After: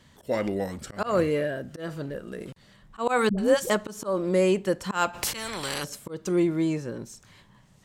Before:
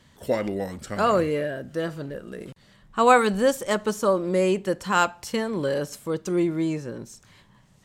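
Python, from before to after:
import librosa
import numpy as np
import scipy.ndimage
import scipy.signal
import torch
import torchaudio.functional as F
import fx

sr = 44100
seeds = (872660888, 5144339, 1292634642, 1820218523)

y = fx.auto_swell(x, sr, attack_ms=161.0)
y = fx.dispersion(y, sr, late='highs', ms=92.0, hz=460.0, at=(3.29, 3.7))
y = fx.spectral_comp(y, sr, ratio=4.0, at=(5.13, 5.83), fade=0.02)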